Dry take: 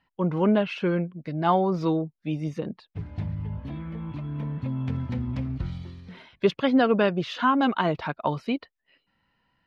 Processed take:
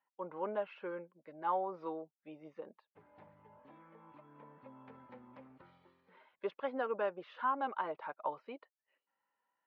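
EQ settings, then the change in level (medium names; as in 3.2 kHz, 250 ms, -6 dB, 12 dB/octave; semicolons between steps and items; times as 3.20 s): Butterworth band-stop 690 Hz, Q 7.1; ladder band-pass 870 Hz, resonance 20%; +1.0 dB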